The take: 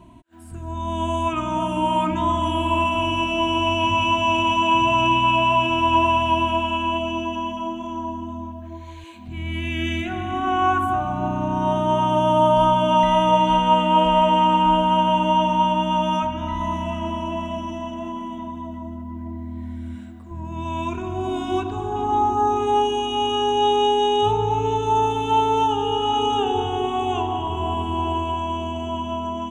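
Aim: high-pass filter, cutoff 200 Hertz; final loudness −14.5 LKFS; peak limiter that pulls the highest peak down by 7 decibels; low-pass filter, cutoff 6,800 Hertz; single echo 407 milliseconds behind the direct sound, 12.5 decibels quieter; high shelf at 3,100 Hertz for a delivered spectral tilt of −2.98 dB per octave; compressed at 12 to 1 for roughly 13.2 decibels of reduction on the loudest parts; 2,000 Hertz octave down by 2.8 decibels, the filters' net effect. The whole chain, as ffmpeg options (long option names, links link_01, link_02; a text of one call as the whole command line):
ffmpeg -i in.wav -af "highpass=200,lowpass=6800,equalizer=frequency=2000:width_type=o:gain=-7,highshelf=frequency=3100:gain=4,acompressor=threshold=-27dB:ratio=12,alimiter=level_in=2.5dB:limit=-24dB:level=0:latency=1,volume=-2.5dB,aecho=1:1:407:0.237,volume=20dB" out.wav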